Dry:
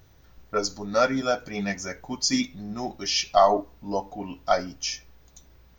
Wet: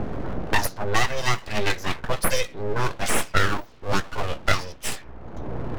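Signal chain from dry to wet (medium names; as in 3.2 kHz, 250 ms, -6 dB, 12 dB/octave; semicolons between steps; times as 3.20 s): level-controlled noise filter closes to 660 Hz, open at -20 dBFS; bass shelf 100 Hz -7.5 dB; full-wave rectifier; three bands compressed up and down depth 100%; trim +6 dB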